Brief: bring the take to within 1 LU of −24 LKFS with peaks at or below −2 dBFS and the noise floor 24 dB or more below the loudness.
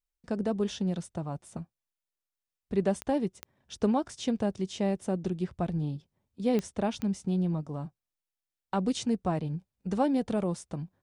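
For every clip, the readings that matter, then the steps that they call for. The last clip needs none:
number of clicks 4; integrated loudness −31.5 LKFS; sample peak −14.5 dBFS; target loudness −24.0 LKFS
→ click removal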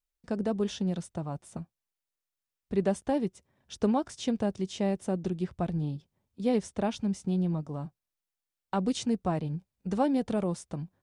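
number of clicks 0; integrated loudness −31.5 LKFS; sample peak −14.5 dBFS; target loudness −24.0 LKFS
→ level +7.5 dB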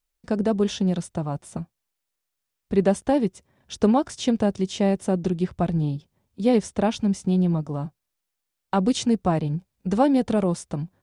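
integrated loudness −24.0 LKFS; sample peak −7.0 dBFS; background noise floor −82 dBFS

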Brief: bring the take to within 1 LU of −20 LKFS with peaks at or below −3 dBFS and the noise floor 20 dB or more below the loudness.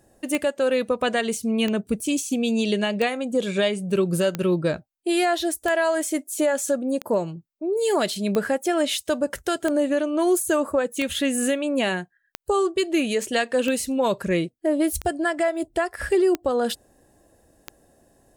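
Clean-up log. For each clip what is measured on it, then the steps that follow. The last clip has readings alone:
number of clicks 14; integrated loudness −23.5 LKFS; sample peak −7.0 dBFS; target loudness −20.0 LKFS
→ click removal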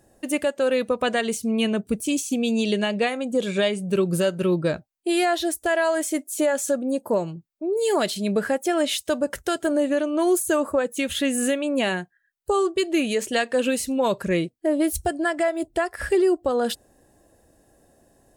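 number of clicks 0; integrated loudness −23.5 LKFS; sample peak −12.5 dBFS; target loudness −20.0 LKFS
→ level +3.5 dB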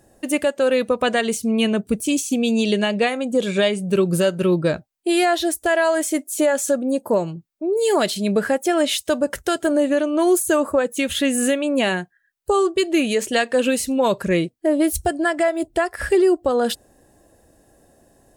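integrated loudness −20.0 LKFS; sample peak −9.0 dBFS; background noise floor −62 dBFS

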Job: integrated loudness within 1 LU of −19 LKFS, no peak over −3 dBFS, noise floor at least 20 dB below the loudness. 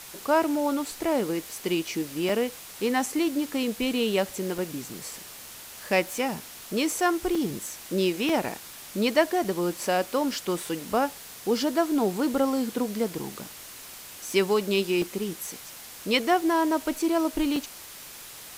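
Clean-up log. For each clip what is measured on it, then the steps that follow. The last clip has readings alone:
number of dropouts 8; longest dropout 3.3 ms; background noise floor −44 dBFS; target noise floor −47 dBFS; integrated loudness −27.0 LKFS; sample peak −7.5 dBFS; target loudness −19.0 LKFS
→ repair the gap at 0:02.29/0:03.06/0:04.58/0:07.35/0:08.29/0:09.44/0:15.02/0:17.56, 3.3 ms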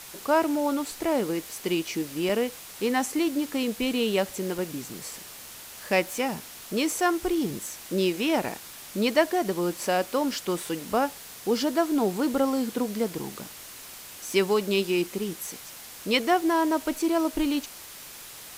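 number of dropouts 0; background noise floor −44 dBFS; target noise floor −47 dBFS
→ broadband denoise 6 dB, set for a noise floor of −44 dBFS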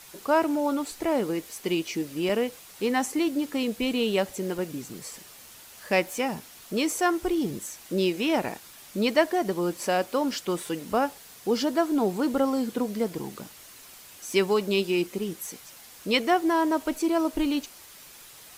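background noise floor −49 dBFS; integrated loudness −27.0 LKFS; sample peak −7.5 dBFS; target loudness −19.0 LKFS
→ level +8 dB
brickwall limiter −3 dBFS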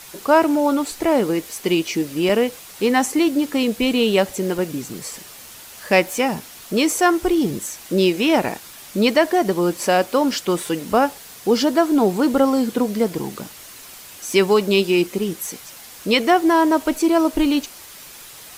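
integrated loudness −19.0 LKFS; sample peak −3.0 dBFS; background noise floor −41 dBFS

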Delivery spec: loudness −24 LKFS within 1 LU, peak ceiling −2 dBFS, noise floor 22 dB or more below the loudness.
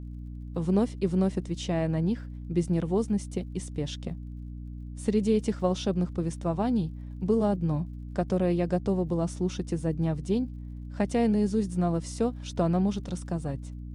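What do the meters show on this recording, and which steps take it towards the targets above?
crackle rate 36 per second; mains hum 60 Hz; hum harmonics up to 300 Hz; level of the hum −37 dBFS; integrated loudness −29.0 LKFS; sample peak −13.5 dBFS; target loudness −24.0 LKFS
→ click removal
mains-hum notches 60/120/180/240/300 Hz
level +5 dB

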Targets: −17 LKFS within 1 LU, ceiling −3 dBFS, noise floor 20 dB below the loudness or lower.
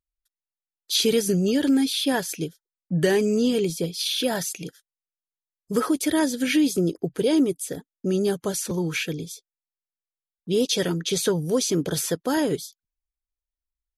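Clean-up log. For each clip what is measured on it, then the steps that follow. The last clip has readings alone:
integrated loudness −24.0 LKFS; sample peak −9.0 dBFS; target loudness −17.0 LKFS
→ level +7 dB
brickwall limiter −3 dBFS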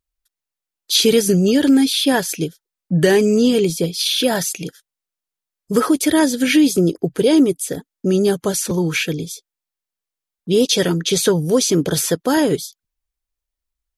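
integrated loudness −17.0 LKFS; sample peak −3.0 dBFS; background noise floor −86 dBFS

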